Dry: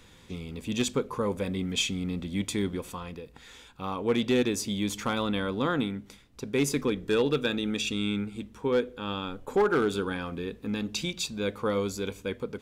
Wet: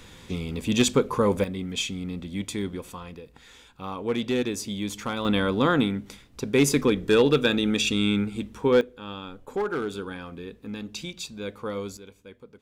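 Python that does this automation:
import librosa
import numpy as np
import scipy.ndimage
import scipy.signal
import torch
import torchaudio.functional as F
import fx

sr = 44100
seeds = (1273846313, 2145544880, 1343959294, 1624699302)

y = fx.gain(x, sr, db=fx.steps((0.0, 7.0), (1.44, -1.0), (5.25, 6.0), (8.81, -4.0), (11.97, -13.5)))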